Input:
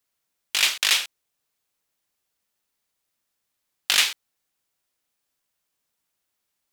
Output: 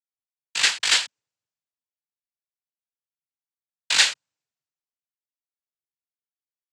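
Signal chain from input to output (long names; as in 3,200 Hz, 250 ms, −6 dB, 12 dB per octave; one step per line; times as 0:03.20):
cochlear-implant simulation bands 8
multiband upward and downward expander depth 70%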